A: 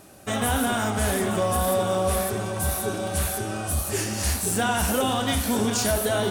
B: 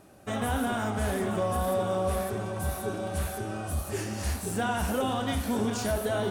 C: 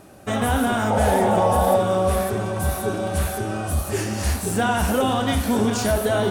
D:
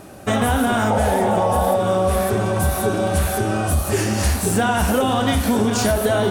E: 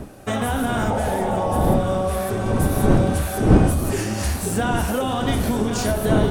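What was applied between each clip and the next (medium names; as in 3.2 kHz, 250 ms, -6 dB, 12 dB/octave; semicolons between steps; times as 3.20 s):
treble shelf 2.7 kHz -8.5 dB; trim -4 dB
painted sound noise, 0.90–1.77 s, 460–930 Hz -29 dBFS; trim +8 dB
compression, threshold -21 dBFS, peak gain reduction 8 dB; trim +6.5 dB
wind noise 260 Hz -18 dBFS; trim -4.5 dB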